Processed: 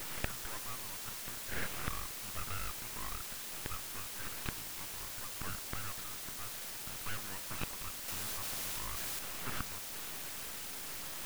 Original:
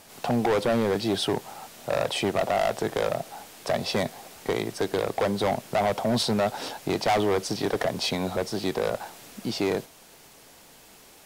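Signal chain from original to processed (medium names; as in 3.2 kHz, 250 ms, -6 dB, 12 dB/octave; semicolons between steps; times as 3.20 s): elliptic band-pass 540–2000 Hz; full-wave rectifier; random-step tremolo; inverted gate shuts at -35 dBFS, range -25 dB; in parallel at -3.5 dB: word length cut 8-bit, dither triangular; 8.08–9.19 s: on the sum: level flattener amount 100%; trim +7.5 dB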